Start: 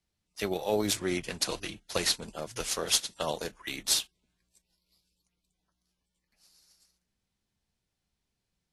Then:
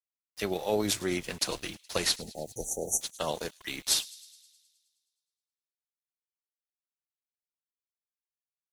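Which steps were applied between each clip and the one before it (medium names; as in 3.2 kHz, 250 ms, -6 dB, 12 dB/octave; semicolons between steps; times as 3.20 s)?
small samples zeroed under -46.5 dBFS; spectral selection erased 2.21–3.01 s, 870–5700 Hz; feedback echo behind a high-pass 105 ms, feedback 64%, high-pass 3.4 kHz, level -19 dB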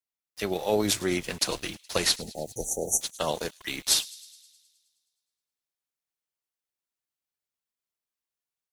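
level rider gain up to 3.5 dB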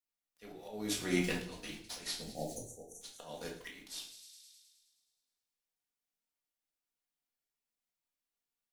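flange 0.44 Hz, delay 3.2 ms, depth 2.5 ms, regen +89%; slow attack 633 ms; reverberation RT60 0.55 s, pre-delay 4 ms, DRR -1.5 dB; trim -1 dB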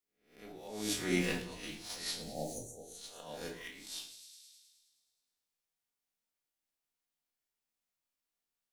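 reverse spectral sustain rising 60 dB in 0.48 s; trim -1 dB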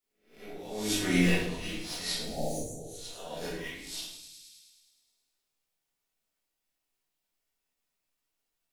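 simulated room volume 120 m³, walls mixed, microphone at 1.5 m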